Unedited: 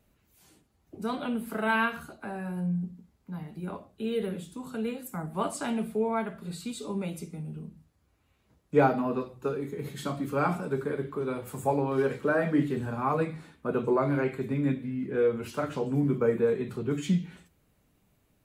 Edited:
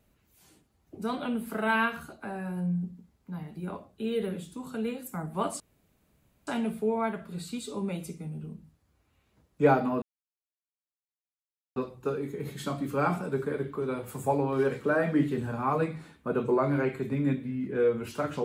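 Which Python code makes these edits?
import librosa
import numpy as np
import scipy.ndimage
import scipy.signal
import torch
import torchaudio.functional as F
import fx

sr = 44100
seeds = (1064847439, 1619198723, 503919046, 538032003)

y = fx.edit(x, sr, fx.insert_room_tone(at_s=5.6, length_s=0.87),
    fx.insert_silence(at_s=9.15, length_s=1.74), tone=tone)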